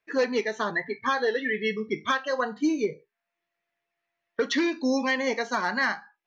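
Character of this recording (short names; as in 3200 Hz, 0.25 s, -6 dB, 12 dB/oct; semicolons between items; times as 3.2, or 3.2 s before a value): noise floor -85 dBFS; spectral tilt -1.5 dB/oct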